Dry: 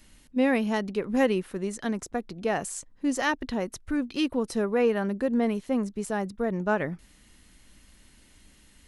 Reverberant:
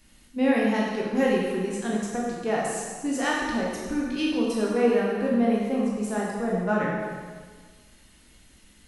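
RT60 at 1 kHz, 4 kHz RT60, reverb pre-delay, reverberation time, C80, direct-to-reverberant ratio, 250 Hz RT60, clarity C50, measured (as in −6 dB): 1.6 s, 1.5 s, 7 ms, 1.6 s, 1.5 dB, −4.0 dB, 1.6 s, 0.0 dB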